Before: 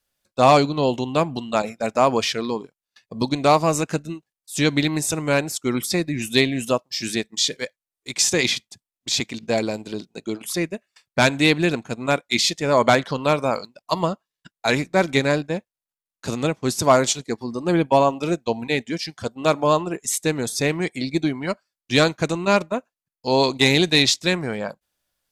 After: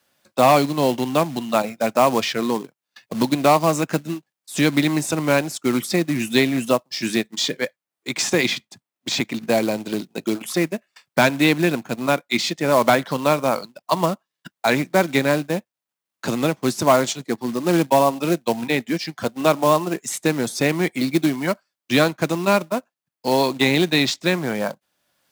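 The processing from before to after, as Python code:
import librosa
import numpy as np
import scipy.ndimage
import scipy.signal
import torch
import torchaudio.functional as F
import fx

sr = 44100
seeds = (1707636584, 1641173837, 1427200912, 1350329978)

p1 = fx.peak_eq(x, sr, hz=12000.0, db=-8.0, octaves=2.7)
p2 = fx.rider(p1, sr, range_db=4, speed_s=2.0)
p3 = p1 + F.gain(torch.from_numpy(p2), 3.0).numpy()
p4 = fx.quant_float(p3, sr, bits=2)
p5 = scipy.signal.sosfilt(scipy.signal.butter(2, 150.0, 'highpass', fs=sr, output='sos'), p4)
p6 = fx.peak_eq(p5, sr, hz=440.0, db=-4.5, octaves=0.31)
p7 = fx.band_squash(p6, sr, depth_pct=40)
y = F.gain(torch.from_numpy(p7), -5.0).numpy()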